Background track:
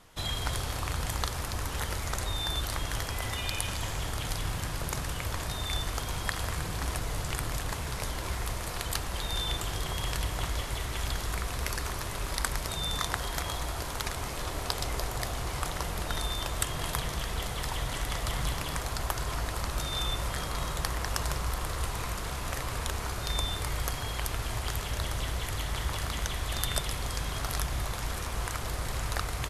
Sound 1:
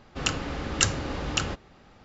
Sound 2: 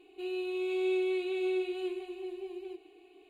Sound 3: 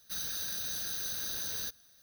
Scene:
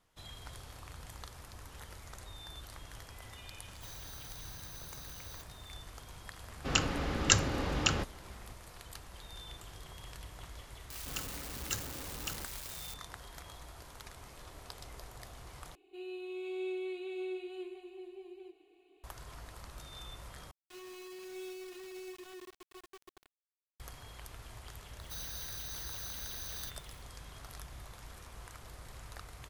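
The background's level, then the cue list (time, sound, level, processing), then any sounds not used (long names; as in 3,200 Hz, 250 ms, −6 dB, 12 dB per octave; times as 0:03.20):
background track −16.5 dB
0:03.72: mix in 3 −13.5 dB
0:06.49: mix in 1 −2 dB
0:10.90: mix in 1 −15.5 dB + spike at every zero crossing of −17 dBFS
0:15.75: overwrite with 2 −8 dB
0:20.51: overwrite with 2 −15.5 dB + bit reduction 6 bits
0:25.00: mix in 3 −7 dB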